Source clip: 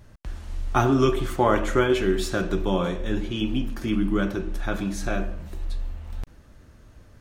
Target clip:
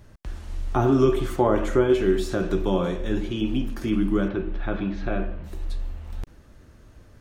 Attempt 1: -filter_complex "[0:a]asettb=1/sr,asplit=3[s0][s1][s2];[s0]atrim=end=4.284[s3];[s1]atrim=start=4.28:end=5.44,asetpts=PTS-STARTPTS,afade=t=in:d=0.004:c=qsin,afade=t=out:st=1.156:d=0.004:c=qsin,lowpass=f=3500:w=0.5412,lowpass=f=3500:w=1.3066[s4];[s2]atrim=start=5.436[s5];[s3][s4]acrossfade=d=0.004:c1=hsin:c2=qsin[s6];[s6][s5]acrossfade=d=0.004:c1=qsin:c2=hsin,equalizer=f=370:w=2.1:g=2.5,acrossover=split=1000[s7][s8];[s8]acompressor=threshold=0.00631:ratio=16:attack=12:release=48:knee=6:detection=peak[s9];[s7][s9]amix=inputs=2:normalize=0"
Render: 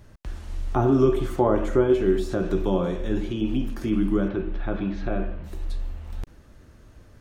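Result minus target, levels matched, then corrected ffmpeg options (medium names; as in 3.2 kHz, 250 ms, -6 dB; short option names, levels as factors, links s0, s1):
compression: peak gain reduction +6 dB
-filter_complex "[0:a]asettb=1/sr,asplit=3[s0][s1][s2];[s0]atrim=end=4.284[s3];[s1]atrim=start=4.28:end=5.44,asetpts=PTS-STARTPTS,afade=t=in:d=0.004:c=qsin,afade=t=out:st=1.156:d=0.004:c=qsin,lowpass=f=3500:w=0.5412,lowpass=f=3500:w=1.3066[s4];[s2]atrim=start=5.436[s5];[s3][s4]acrossfade=d=0.004:c1=hsin:c2=qsin[s6];[s6][s5]acrossfade=d=0.004:c1=qsin:c2=hsin,equalizer=f=370:w=2.1:g=2.5,acrossover=split=1000[s7][s8];[s8]acompressor=threshold=0.0133:ratio=16:attack=12:release=48:knee=6:detection=peak[s9];[s7][s9]amix=inputs=2:normalize=0"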